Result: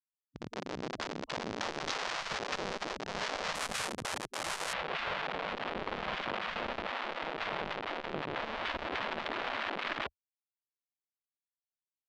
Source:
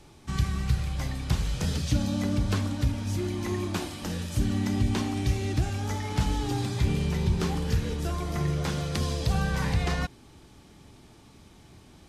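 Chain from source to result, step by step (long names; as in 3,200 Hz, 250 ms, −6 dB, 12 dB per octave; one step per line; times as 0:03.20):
asymmetric clip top −37 dBFS, bottom −16.5 dBFS
automatic gain control gain up to 12.5 dB
low-shelf EQ 170 Hz −5.5 dB
convolution reverb RT60 0.25 s, pre-delay 3 ms, DRR 10.5 dB
comparator with hysteresis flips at −20 dBFS
low-pass filter 5,800 Hz 24 dB per octave, from 0:03.55 10,000 Hz, from 0:04.73 3,500 Hz
brickwall limiter −22.5 dBFS, peak gain reduction 8.5 dB
high-shelf EQ 4,600 Hz +4 dB
gate on every frequency bin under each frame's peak −15 dB weak
saturating transformer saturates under 610 Hz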